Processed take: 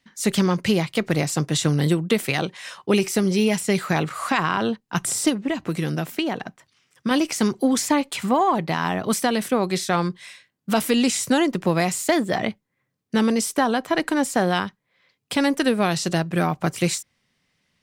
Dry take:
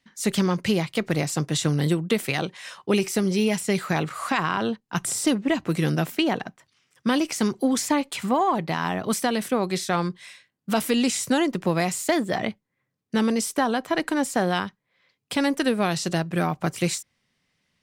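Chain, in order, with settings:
0:05.29–0:07.11: downward compressor 2.5 to 1, threshold −25 dBFS, peak gain reduction 5.5 dB
level +2.5 dB

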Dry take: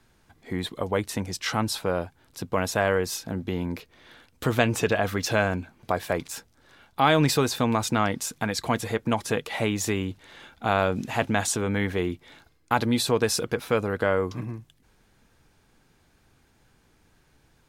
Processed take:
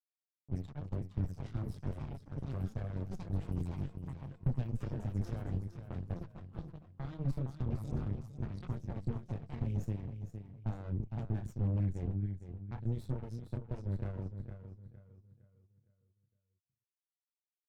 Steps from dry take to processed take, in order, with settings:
spectral dynamics exaggerated over time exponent 1.5
multi-voice chorus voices 6, 0.73 Hz, delay 26 ms, depth 4.8 ms
delay with pitch and tempo change per echo 136 ms, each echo +7 semitones, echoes 3, each echo −6 dB
dead-zone distortion −41 dBFS
downward compressor 12 to 1, threshold −35 dBFS, peak gain reduction 14 dB
parametric band 120 Hz +15 dB 2.1 octaves
low-pass that shuts in the quiet parts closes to 610 Hz, open at −29 dBFS
on a send: repeating echo 460 ms, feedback 40%, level −7.5 dB
on the sum: harmonic generator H 6 −7 dB, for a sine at −16.5 dBFS
drawn EQ curve 140 Hz 0 dB, 250 Hz −8 dB, 2,000 Hz −19 dB
level −5.5 dB

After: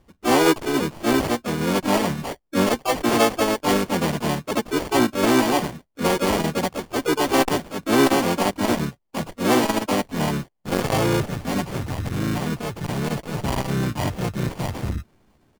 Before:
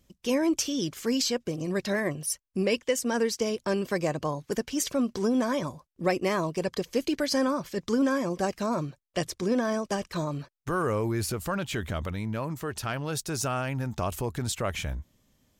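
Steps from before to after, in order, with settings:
harmonic and percussive parts rebalanced percussive −9 dB
decimation without filtering 34×
pitch-shifted copies added −12 semitones −13 dB, +4 semitones −3 dB, +7 semitones −2 dB
saturating transformer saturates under 580 Hz
level +6.5 dB

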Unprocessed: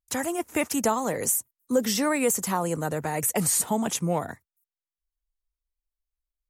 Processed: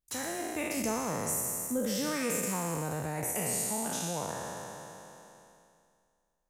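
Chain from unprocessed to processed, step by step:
peak hold with a decay on every bin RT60 2.16 s
0:00.77–0:03.24: bass and treble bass +9 dB, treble +1 dB
downward compressor 1.5 to 1, threshold −50 dBFS, peak gain reduction 13 dB
level −1.5 dB

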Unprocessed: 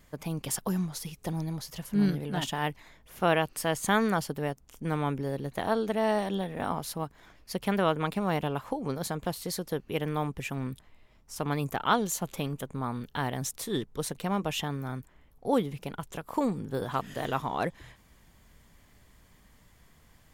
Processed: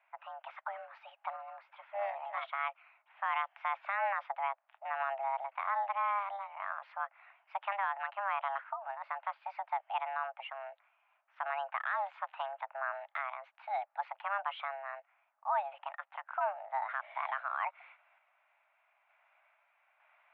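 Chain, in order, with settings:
single-sideband voice off tune +400 Hz 290–2,300 Hz
sample-and-hold tremolo 2.2 Hz, depth 55%
brickwall limiter −23.5 dBFS, peak gain reduction 11.5 dB

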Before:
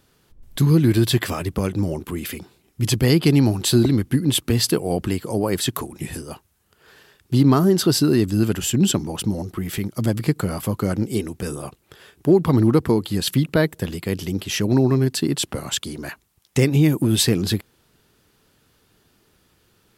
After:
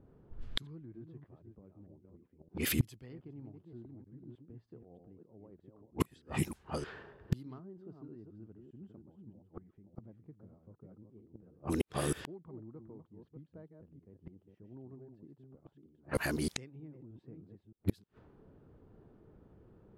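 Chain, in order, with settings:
delay that plays each chunk backwards 311 ms, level −5 dB
gate with flip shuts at −19 dBFS, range −37 dB
low-pass that shuts in the quiet parts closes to 470 Hz, open at −33.5 dBFS
level +3 dB

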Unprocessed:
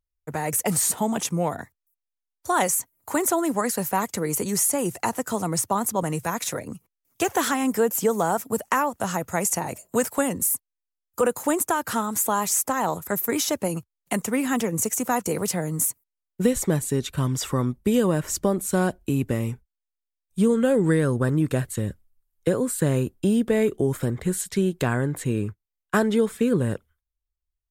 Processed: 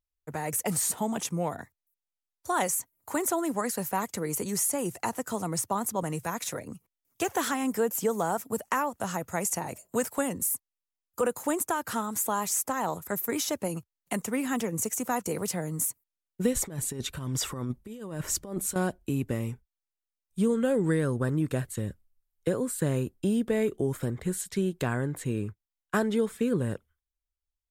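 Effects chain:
0:16.55–0:18.76: compressor whose output falls as the input rises −26 dBFS, ratio −0.5
level −5.5 dB

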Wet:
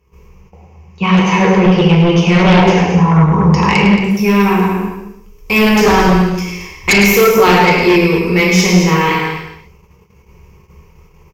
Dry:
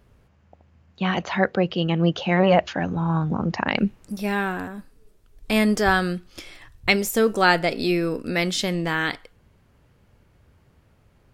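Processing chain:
EQ curve with evenly spaced ripples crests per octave 0.78, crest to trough 16 dB
reverb whose tail is shaped and stops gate 340 ms falling, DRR −4.5 dB
sine wavefolder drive 6 dB, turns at −0.5 dBFS
dynamic equaliser 8,700 Hz, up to −5 dB, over −30 dBFS, Q 1.8
on a send: loudspeakers that aren't time-aligned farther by 36 metres −9 dB, 77 metres −11 dB
on the sum: noise gate −38 dBFS, range −11 dB
level −5 dB

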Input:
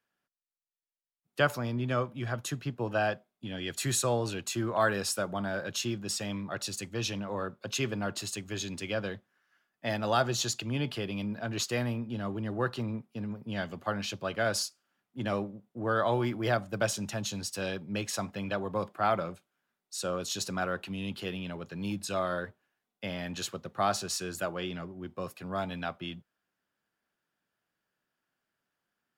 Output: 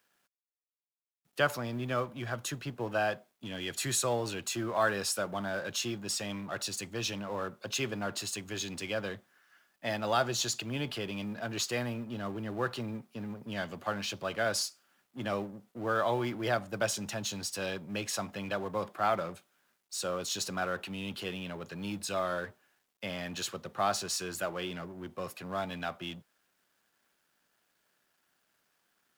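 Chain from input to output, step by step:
mu-law and A-law mismatch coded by mu
low-shelf EQ 240 Hz −6.5 dB
level −1.5 dB

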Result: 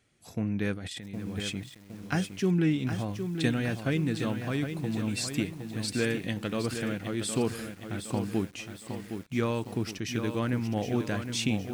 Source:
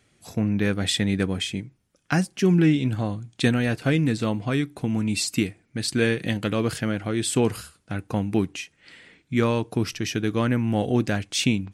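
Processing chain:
0:00.77–0:01.56: compressor whose output falls as the input rises −32 dBFS, ratio −1
feedback echo at a low word length 764 ms, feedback 55%, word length 7 bits, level −7.5 dB
level −7 dB

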